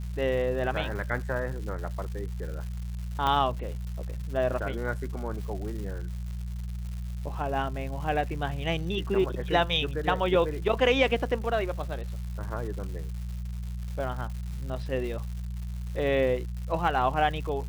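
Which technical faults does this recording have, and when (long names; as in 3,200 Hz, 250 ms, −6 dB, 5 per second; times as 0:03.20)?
surface crackle 300 per second −38 dBFS
mains hum 60 Hz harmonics 3 −34 dBFS
0:03.27: click −15 dBFS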